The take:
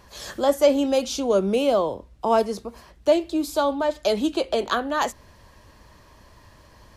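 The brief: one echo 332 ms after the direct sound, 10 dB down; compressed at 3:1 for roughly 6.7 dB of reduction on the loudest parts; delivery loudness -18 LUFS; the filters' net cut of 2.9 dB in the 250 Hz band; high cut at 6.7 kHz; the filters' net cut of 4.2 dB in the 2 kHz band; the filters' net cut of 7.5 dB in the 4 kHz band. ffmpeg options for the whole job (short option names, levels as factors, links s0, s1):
-af "lowpass=6700,equalizer=f=250:t=o:g=-3.5,equalizer=f=2000:t=o:g=-4,equalizer=f=4000:t=o:g=-8,acompressor=threshold=0.0794:ratio=3,aecho=1:1:332:0.316,volume=2.99"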